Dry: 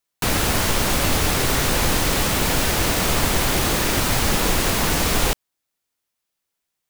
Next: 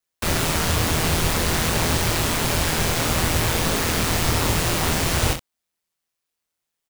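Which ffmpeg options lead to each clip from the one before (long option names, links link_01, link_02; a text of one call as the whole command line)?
ffmpeg -i in.wav -af "equalizer=frequency=14000:width_type=o:width=0.3:gain=-3,aeval=exprs='val(0)*sin(2*PI*83*n/s)':channel_layout=same,aecho=1:1:26|63:0.562|0.299" out.wav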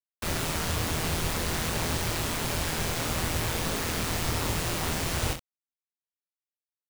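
ffmpeg -i in.wav -af "acrusher=bits=7:mix=0:aa=0.000001,volume=-8dB" out.wav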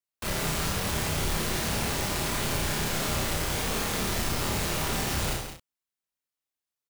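ffmpeg -i in.wav -filter_complex "[0:a]asoftclip=type=tanh:threshold=-28.5dB,asplit=2[link_01][link_02];[link_02]adelay=31,volume=-2.5dB[link_03];[link_01][link_03]amix=inputs=2:normalize=0,asplit=2[link_04][link_05];[link_05]aecho=0:1:84.55|172:0.398|0.355[link_06];[link_04][link_06]amix=inputs=2:normalize=0,volume=1.5dB" out.wav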